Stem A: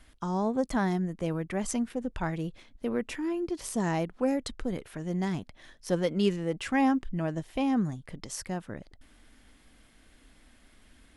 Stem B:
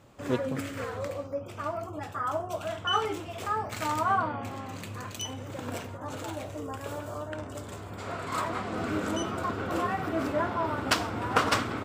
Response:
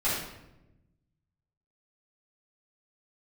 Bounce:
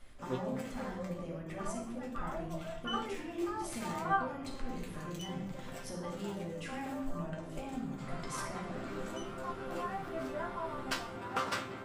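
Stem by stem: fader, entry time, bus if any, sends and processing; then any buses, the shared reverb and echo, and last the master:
−9.5 dB, 0.00 s, send −3.5 dB, downward compressor 6 to 1, threshold −38 dBFS, peak gain reduction 16.5 dB
+2.5 dB, 0.00 s, no send, resonators tuned to a chord C3 sus4, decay 0.21 s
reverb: on, RT60 0.95 s, pre-delay 3 ms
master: no processing

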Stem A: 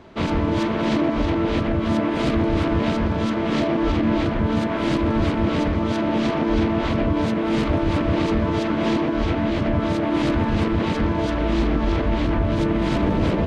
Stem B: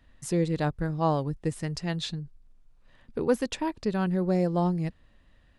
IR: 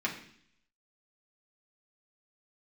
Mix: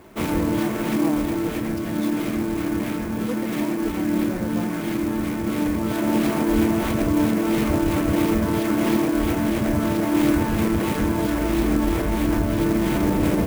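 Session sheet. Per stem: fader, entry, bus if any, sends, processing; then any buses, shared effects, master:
−3.0 dB, 0.00 s, send −11 dB, automatic ducking −9 dB, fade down 1.95 s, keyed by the second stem
−7.5 dB, 0.00 s, no send, no processing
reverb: on, RT60 0.60 s, pre-delay 3 ms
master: converter with an unsteady clock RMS 0.039 ms

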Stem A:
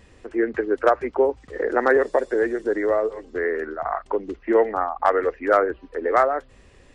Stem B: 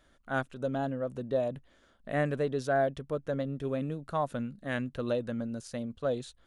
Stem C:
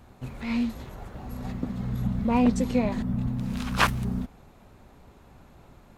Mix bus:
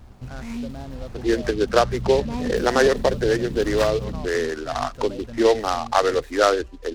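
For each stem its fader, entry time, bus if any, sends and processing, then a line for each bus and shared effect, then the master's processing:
0.0 dB, 0.90 s, no send, no processing
−4.5 dB, 0.00 s, no send, brickwall limiter −25.5 dBFS, peak gain reduction 9.5 dB
+0.5 dB, 0.00 s, no send, downward compressor 1.5 to 1, threshold −45 dBFS, peak gain reduction 10.5 dB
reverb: not used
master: low-shelf EQ 110 Hz +11 dB; short delay modulated by noise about 3,400 Hz, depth 0.041 ms

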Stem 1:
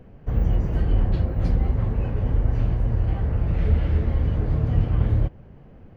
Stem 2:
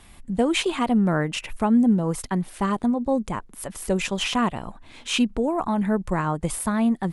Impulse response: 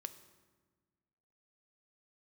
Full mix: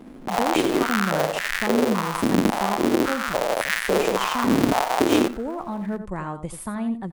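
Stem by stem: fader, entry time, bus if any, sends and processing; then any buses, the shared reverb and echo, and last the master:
−1.0 dB, 0.00 s, no send, echo send −17 dB, each half-wave held at its own peak; high-pass on a step sequencer 3.6 Hz 250–1,800 Hz
−7.5 dB, 0.00 s, send −10.5 dB, echo send −8.5 dB, no processing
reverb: on, RT60 1.4 s, pre-delay 3 ms
echo: single-tap delay 87 ms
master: one half of a high-frequency compander decoder only

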